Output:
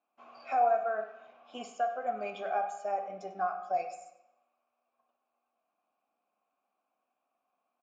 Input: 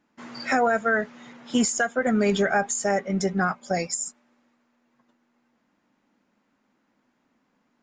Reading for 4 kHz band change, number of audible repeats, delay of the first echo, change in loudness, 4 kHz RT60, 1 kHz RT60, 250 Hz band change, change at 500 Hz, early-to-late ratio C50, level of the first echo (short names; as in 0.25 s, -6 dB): -18.5 dB, 1, 96 ms, -8.5 dB, 0.80 s, 0.80 s, -26.0 dB, -8.5 dB, 8.0 dB, -16.0 dB